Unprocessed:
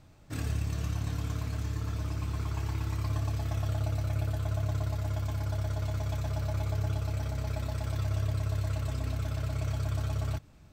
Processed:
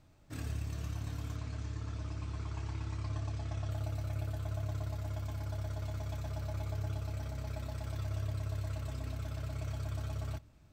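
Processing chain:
0:01.36–0:03.71: low-pass filter 7,800 Hz 24 dB per octave
convolution reverb RT60 0.50 s, pre-delay 3 ms, DRR 17.5 dB
level −6.5 dB

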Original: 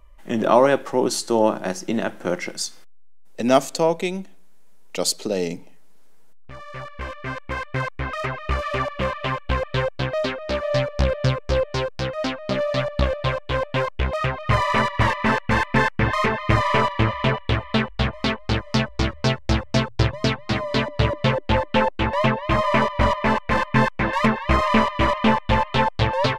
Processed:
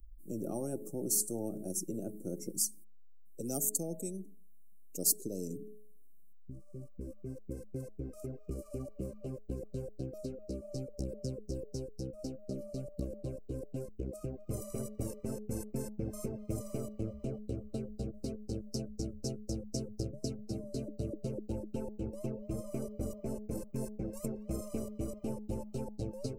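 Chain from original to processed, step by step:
spectral dynamics exaggerated over time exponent 1.5
elliptic band-stop filter 330–8,900 Hz, stop band 50 dB
hum removal 211.8 Hz, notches 4
every bin compressed towards the loudest bin 4 to 1
level −4.5 dB

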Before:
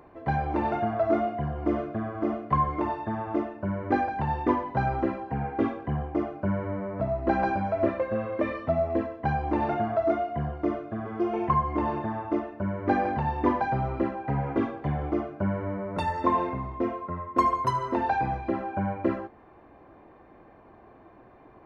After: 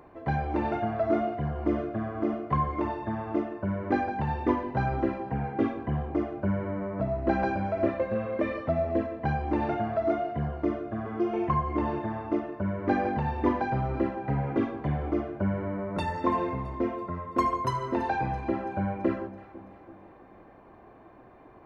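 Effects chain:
dynamic equaliser 950 Hz, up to −4 dB, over −37 dBFS, Q 1.2
on a send: delay that swaps between a low-pass and a high-pass 166 ms, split 1,000 Hz, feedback 72%, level −14 dB

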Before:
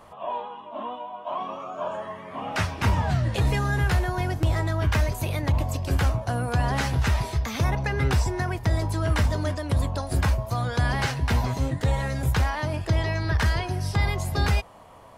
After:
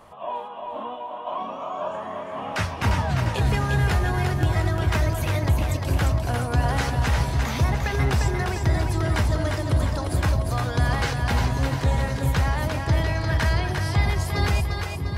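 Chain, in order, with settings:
echo with a time of its own for lows and highs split 360 Hz, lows 631 ms, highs 350 ms, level −4.5 dB

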